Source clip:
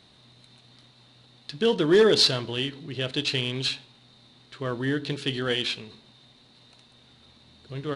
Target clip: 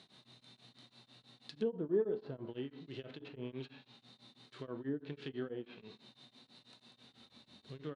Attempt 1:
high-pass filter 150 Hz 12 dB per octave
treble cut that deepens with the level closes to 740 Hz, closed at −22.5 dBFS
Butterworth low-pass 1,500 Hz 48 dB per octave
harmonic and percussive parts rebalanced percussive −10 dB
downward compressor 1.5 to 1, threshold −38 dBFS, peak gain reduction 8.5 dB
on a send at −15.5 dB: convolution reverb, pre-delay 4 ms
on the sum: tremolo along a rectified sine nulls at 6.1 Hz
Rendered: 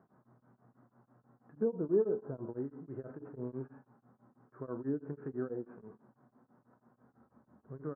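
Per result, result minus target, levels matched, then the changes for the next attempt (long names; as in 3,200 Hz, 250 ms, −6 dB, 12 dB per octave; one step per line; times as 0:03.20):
2,000 Hz band −8.5 dB; downward compressor: peak gain reduction −3.5 dB
remove: Butterworth low-pass 1,500 Hz 48 dB per octave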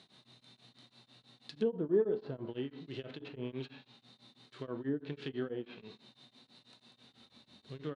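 downward compressor: peak gain reduction −3.5 dB
change: downward compressor 1.5 to 1, threshold −48 dBFS, peak gain reduction 11.5 dB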